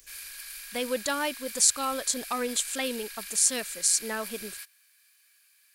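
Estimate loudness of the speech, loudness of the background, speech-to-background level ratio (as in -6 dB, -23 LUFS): -27.0 LUFS, -39.0 LUFS, 12.0 dB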